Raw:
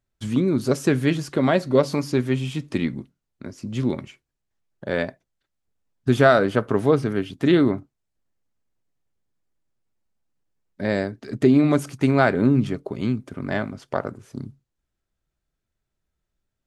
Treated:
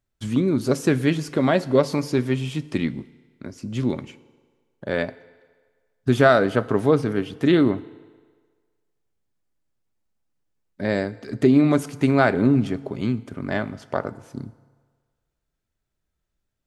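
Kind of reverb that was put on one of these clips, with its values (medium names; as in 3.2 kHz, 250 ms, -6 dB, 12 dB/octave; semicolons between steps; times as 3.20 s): FDN reverb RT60 1.6 s, low-frequency decay 0.75×, high-frequency decay 0.85×, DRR 17 dB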